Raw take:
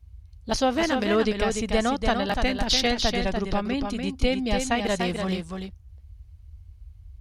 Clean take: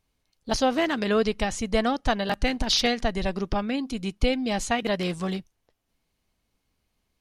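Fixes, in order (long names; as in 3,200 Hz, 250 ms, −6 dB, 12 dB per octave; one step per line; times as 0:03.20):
noise reduction from a noise print 28 dB
echo removal 293 ms −5.5 dB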